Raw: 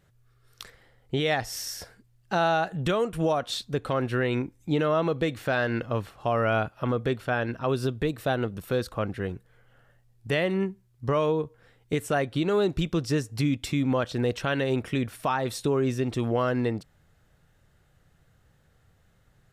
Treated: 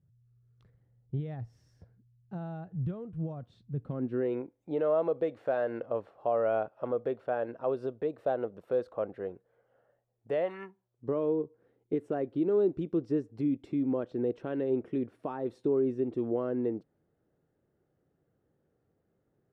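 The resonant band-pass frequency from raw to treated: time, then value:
resonant band-pass, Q 2
0:03.73 120 Hz
0:04.42 550 Hz
0:10.41 550 Hz
0:10.57 1,600 Hz
0:11.07 350 Hz

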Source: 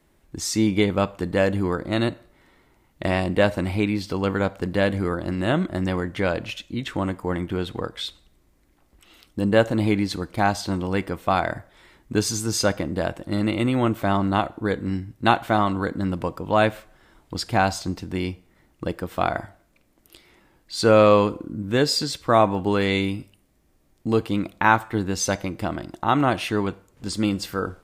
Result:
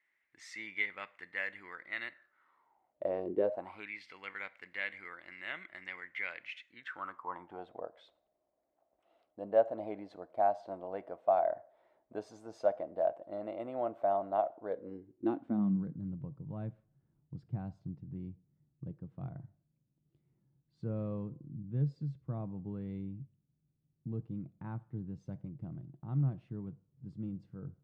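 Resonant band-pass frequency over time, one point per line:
resonant band-pass, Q 7.4
0:02.11 2,000 Hz
0:03.37 360 Hz
0:03.93 2,100 Hz
0:06.61 2,100 Hz
0:07.73 650 Hz
0:14.65 650 Hz
0:16.00 140 Hz

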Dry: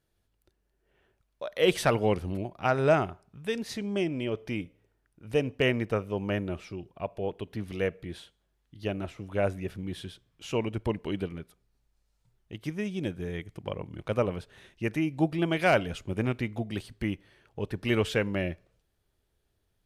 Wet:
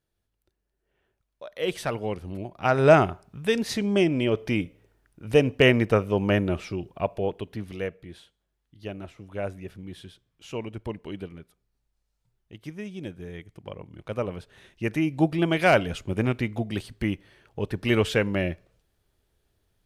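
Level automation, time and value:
0:02.19 −4.5 dB
0:02.95 +7.5 dB
0:07.04 +7.5 dB
0:08.01 −4 dB
0:13.95 −4 dB
0:15.08 +4 dB

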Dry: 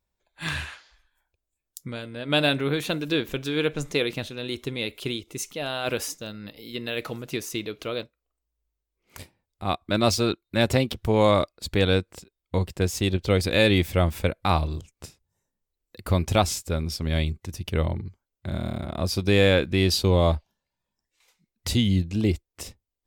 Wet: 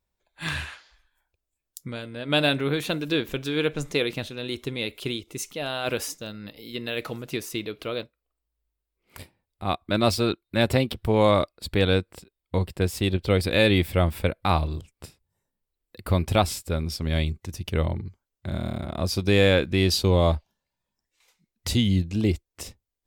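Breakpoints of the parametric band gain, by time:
parametric band 6,400 Hz 0.37 octaves
0:07.26 −1.5 dB
0:07.75 −9.5 dB
0:16.47 −9.5 dB
0:17.11 0 dB

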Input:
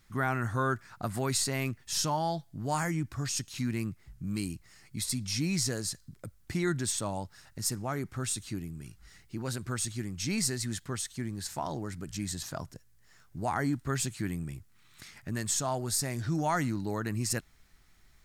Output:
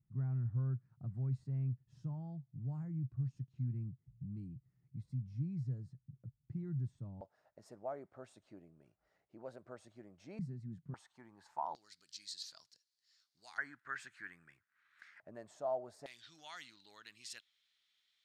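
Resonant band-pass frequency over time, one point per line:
resonant band-pass, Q 4.5
130 Hz
from 0:07.21 610 Hz
from 0:10.39 160 Hz
from 0:10.94 880 Hz
from 0:11.75 4,400 Hz
from 0:13.58 1,600 Hz
from 0:15.20 620 Hz
from 0:16.06 3,400 Hz

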